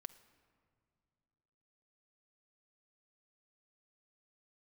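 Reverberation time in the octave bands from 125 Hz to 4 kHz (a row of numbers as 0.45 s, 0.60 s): 2.9 s, 2.8 s, 2.5 s, 2.2 s, 1.7 s, 1.2 s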